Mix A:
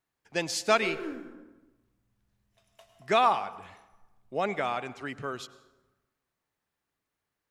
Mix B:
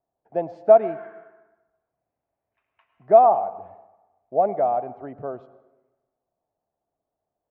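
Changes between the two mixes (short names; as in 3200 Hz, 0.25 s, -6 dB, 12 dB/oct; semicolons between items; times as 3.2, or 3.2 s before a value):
speech: add synth low-pass 680 Hz, resonance Q 5.4; background: add Chebyshev band-pass 900–2500 Hz, order 3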